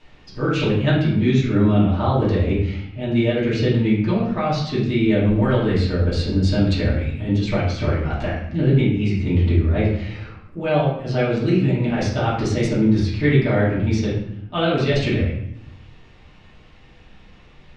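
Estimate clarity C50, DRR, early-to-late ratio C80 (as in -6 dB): 2.5 dB, -9.5 dB, 6.0 dB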